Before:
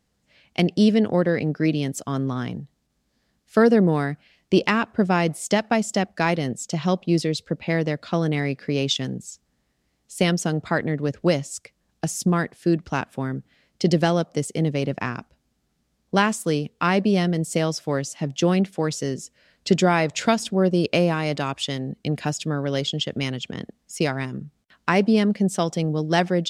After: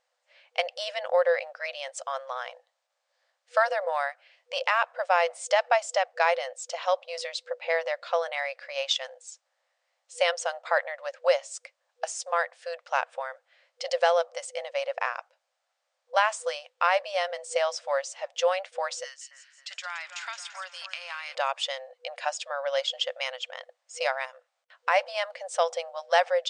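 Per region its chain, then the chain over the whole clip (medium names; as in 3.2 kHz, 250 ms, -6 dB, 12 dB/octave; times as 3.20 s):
19.04–21.35 s: high-pass 1.2 kHz 24 dB/octave + compression 4:1, threshold -32 dBFS + two-band feedback delay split 2.3 kHz, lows 269 ms, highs 170 ms, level -10 dB
whole clip: FFT band-pass 490–9500 Hz; treble shelf 3.8 kHz -8.5 dB; loudness maximiser +10.5 dB; trim -9 dB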